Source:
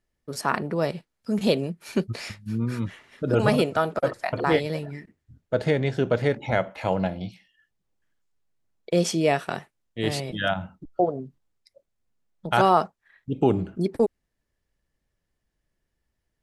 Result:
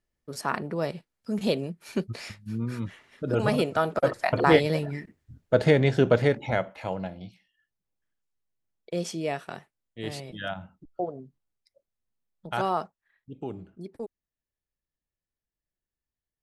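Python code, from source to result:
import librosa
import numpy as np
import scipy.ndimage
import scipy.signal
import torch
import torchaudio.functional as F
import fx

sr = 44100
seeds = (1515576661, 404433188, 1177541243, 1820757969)

y = fx.gain(x, sr, db=fx.line((3.51, -4.0), (4.32, 3.0), (6.08, 3.0), (7.03, -8.5), (12.8, -8.5), (13.46, -15.5)))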